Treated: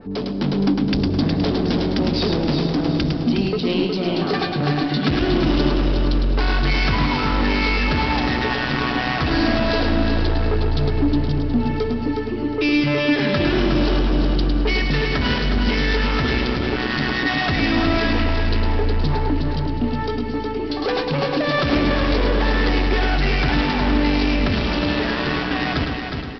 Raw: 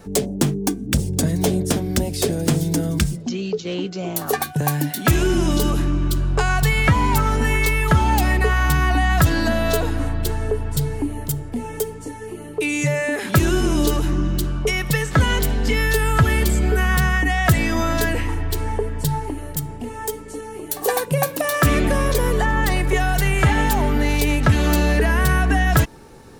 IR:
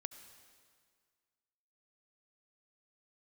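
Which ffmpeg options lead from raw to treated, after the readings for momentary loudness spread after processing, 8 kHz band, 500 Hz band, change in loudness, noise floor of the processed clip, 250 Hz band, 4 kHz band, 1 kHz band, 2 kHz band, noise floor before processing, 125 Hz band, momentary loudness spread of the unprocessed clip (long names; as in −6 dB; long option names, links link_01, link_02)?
4 LU, below −20 dB, +1.0 dB, 0.0 dB, −25 dBFS, +3.5 dB, +4.0 dB, −1.0 dB, −0.5 dB, −35 dBFS, −2.5 dB, 9 LU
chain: -filter_complex "[0:a]aresample=11025,asoftclip=type=tanh:threshold=-24.5dB,aresample=44100,bandreject=frequency=60:width_type=h:width=6,bandreject=frequency=120:width_type=h:width=6,bandreject=frequency=180:width_type=h:width=6,asplit=2[link_01][link_02];[1:a]atrim=start_sample=2205,adelay=106[link_03];[link_02][link_03]afir=irnorm=-1:irlink=0,volume=-2dB[link_04];[link_01][link_04]amix=inputs=2:normalize=0,dynaudnorm=framelen=300:gausssize=3:maxgain=4dB,equalizer=frequency=260:width=1.9:gain=8,aecho=1:1:363|726|1089|1452:0.531|0.186|0.065|0.0228,adynamicequalizer=threshold=0.0112:dfrequency=2700:dqfactor=0.7:tfrequency=2700:tqfactor=0.7:attack=5:release=100:ratio=0.375:range=2.5:mode=boostabove:tftype=highshelf"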